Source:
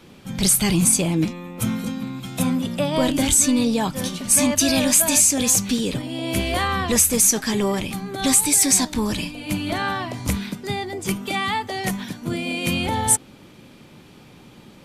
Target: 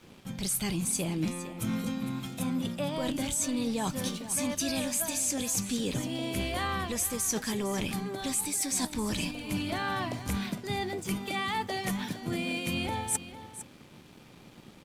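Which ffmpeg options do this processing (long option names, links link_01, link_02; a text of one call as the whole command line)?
ffmpeg -i in.wav -af "areverse,acompressor=threshold=-25dB:ratio=6,areverse,aeval=exprs='sgn(val(0))*max(abs(val(0))-0.00224,0)':channel_layout=same,aecho=1:1:458:0.211,volume=-3dB" out.wav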